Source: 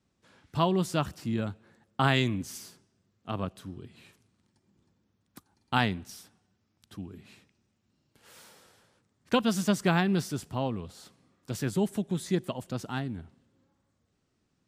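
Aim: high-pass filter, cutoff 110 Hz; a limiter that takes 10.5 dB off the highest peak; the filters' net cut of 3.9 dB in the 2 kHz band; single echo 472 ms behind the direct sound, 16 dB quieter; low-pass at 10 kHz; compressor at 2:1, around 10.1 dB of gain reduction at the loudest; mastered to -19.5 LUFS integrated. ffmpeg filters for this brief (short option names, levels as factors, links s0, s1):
-af "highpass=110,lowpass=10000,equalizer=f=2000:t=o:g=-5.5,acompressor=threshold=0.0112:ratio=2,alimiter=level_in=1.78:limit=0.0631:level=0:latency=1,volume=0.562,aecho=1:1:472:0.158,volume=14.1"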